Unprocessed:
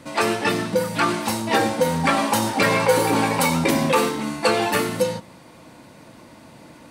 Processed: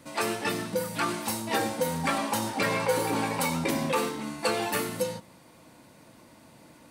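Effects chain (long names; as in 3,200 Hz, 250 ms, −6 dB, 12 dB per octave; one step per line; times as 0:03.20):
high-shelf EQ 8,800 Hz +10.5 dB, from 0:02.18 +2.5 dB, from 0:04.39 +9 dB
level −8.5 dB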